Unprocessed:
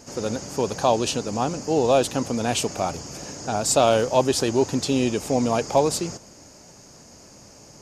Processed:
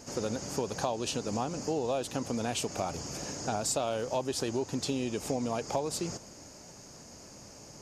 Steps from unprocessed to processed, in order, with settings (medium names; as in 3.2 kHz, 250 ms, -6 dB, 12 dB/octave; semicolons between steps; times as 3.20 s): compression 6:1, threshold -26 dBFS, peak gain reduction 12.5 dB; trim -2.5 dB